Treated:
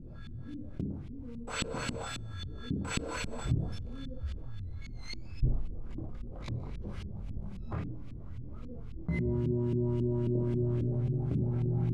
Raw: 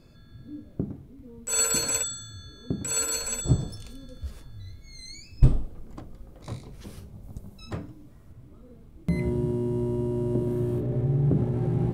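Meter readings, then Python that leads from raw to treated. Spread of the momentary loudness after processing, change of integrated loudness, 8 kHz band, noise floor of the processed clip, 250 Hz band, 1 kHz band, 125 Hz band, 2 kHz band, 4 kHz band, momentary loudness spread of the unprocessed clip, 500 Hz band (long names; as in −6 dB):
14 LU, −8.5 dB, −20.0 dB, −43 dBFS, −5.0 dB, −2.5 dB, −4.5 dB, −2.0 dB, −8.0 dB, 21 LU, −5.5 dB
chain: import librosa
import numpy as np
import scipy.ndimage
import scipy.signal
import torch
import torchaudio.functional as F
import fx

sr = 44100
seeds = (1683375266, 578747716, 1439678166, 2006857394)

p1 = fx.cvsd(x, sr, bps=64000)
p2 = fx.rider(p1, sr, range_db=10, speed_s=0.5)
p3 = F.preemphasis(torch.from_numpy(p2), 0.9).numpy()
p4 = fx.notch(p3, sr, hz=1800.0, q=11.0)
p5 = p4 + fx.room_early_taps(p4, sr, ms=(25, 59), db=(-7.5, -8.5), dry=0)
p6 = fx.filter_lfo_lowpass(p5, sr, shape='saw_up', hz=3.7, low_hz=230.0, high_hz=2900.0, q=1.7)
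p7 = fx.low_shelf(p6, sr, hz=200.0, db=10.5)
p8 = fx.env_flatten(p7, sr, amount_pct=50)
y = p8 * librosa.db_to_amplitude(-1.0)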